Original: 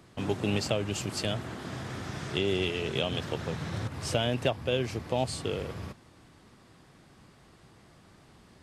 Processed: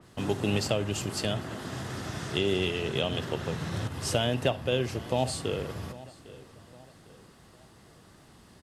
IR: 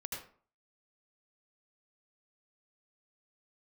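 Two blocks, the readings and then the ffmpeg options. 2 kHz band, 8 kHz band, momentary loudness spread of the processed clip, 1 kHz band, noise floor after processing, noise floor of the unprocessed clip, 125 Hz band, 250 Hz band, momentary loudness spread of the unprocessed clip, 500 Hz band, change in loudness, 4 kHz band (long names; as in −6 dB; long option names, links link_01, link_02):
+1.0 dB, +2.5 dB, 12 LU, +1.5 dB, −56 dBFS, −58 dBFS, +1.5 dB, +1.0 dB, 9 LU, +1.5 dB, +1.5 dB, +1.0 dB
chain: -filter_complex "[0:a]highshelf=frequency=8800:gain=9,bandreject=frequency=2300:width=13,asplit=2[link_01][link_02];[link_02]adelay=804,lowpass=frequency=3700:poles=1,volume=-19dB,asplit=2[link_03][link_04];[link_04]adelay=804,lowpass=frequency=3700:poles=1,volume=0.43,asplit=2[link_05][link_06];[link_06]adelay=804,lowpass=frequency=3700:poles=1,volume=0.43[link_07];[link_01][link_03][link_05][link_07]amix=inputs=4:normalize=0,asplit=2[link_08][link_09];[1:a]atrim=start_sample=2205,asetrate=70560,aresample=44100[link_10];[link_09][link_10]afir=irnorm=-1:irlink=0,volume=-9dB[link_11];[link_08][link_11]amix=inputs=2:normalize=0,adynamicequalizer=threshold=0.00794:dfrequency=3500:dqfactor=0.7:tfrequency=3500:tqfactor=0.7:attack=5:release=100:ratio=0.375:range=2.5:mode=cutabove:tftype=highshelf"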